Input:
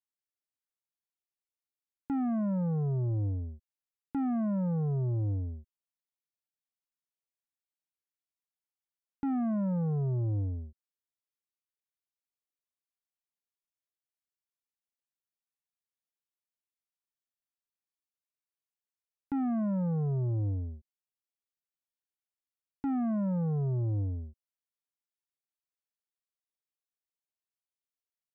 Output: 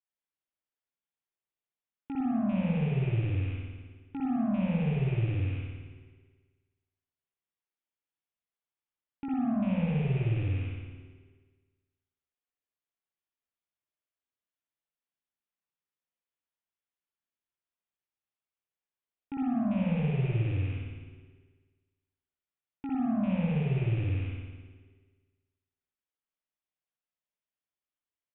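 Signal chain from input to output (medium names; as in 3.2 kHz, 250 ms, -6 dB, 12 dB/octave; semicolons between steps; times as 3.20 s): rattle on loud lows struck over -40 dBFS, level -35 dBFS; resampled via 8 kHz; on a send: frequency-shifting echo 161 ms, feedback 53%, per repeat -120 Hz, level -22 dB; on the sum: spring tank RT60 1.4 s, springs 53 ms, chirp 75 ms, DRR -5 dB; trim -5 dB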